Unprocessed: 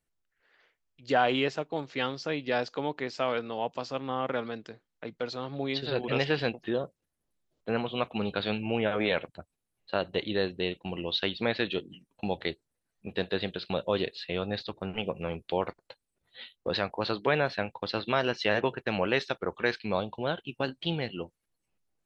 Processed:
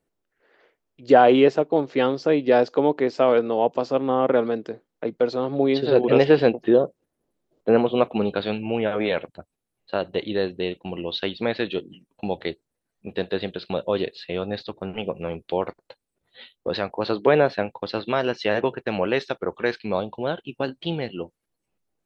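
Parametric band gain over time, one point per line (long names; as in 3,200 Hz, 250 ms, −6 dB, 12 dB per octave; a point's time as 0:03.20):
parametric band 400 Hz 2.7 octaves
0:07.96 +14.5 dB
0:08.55 +5.5 dB
0:16.92 +5.5 dB
0:17.39 +12.5 dB
0:17.79 +6 dB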